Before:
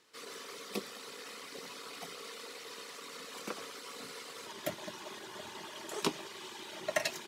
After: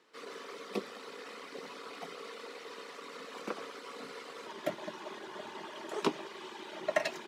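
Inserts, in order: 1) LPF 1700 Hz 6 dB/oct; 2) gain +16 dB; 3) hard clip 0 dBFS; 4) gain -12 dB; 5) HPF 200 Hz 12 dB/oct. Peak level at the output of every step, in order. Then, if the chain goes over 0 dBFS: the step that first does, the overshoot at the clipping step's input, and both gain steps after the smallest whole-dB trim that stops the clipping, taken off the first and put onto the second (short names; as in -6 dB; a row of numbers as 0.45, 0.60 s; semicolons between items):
-18.5, -2.5, -2.5, -14.5, -15.0 dBFS; no overload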